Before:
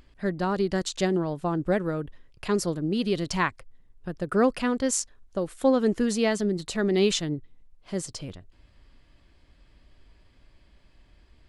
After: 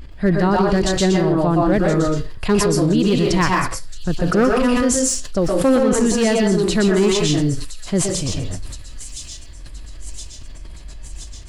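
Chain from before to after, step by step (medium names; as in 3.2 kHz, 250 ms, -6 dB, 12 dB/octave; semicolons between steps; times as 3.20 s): bass shelf 150 Hz +11 dB; overload inside the chain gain 16 dB; feedback echo behind a high-pass 1020 ms, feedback 59%, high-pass 4.9 kHz, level -9 dB; reverberation RT60 0.30 s, pre-delay 115 ms, DRR -1 dB; loudness maximiser +15.5 dB; decay stretcher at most 45 dB/s; trim -7.5 dB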